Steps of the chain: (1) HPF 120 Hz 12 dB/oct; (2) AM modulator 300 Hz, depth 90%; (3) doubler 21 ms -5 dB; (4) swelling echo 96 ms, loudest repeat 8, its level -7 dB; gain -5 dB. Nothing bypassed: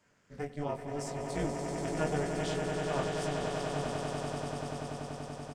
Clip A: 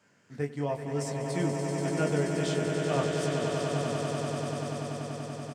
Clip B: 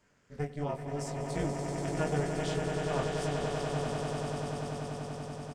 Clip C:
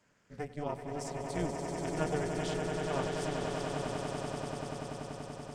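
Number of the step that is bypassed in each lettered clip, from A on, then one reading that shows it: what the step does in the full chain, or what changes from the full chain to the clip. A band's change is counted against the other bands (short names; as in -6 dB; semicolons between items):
2, crest factor change -2.0 dB; 1, 125 Hz band +3.5 dB; 3, loudness change -1.0 LU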